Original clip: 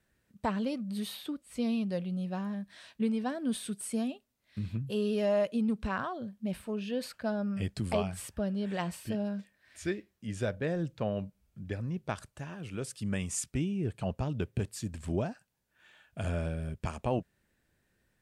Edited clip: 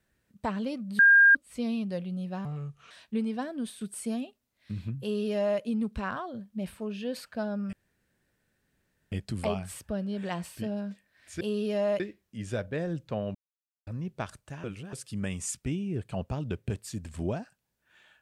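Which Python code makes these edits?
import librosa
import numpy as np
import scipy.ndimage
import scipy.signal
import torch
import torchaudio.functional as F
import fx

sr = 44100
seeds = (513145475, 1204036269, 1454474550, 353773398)

y = fx.edit(x, sr, fx.bleep(start_s=0.99, length_s=0.36, hz=1610.0, db=-14.0),
    fx.speed_span(start_s=2.45, length_s=0.33, speed=0.72),
    fx.fade_out_to(start_s=3.35, length_s=0.33, floor_db=-8.0),
    fx.duplicate(start_s=4.89, length_s=0.59, to_s=9.89),
    fx.insert_room_tone(at_s=7.6, length_s=1.39),
    fx.silence(start_s=11.24, length_s=0.52),
    fx.reverse_span(start_s=12.53, length_s=0.29), tone=tone)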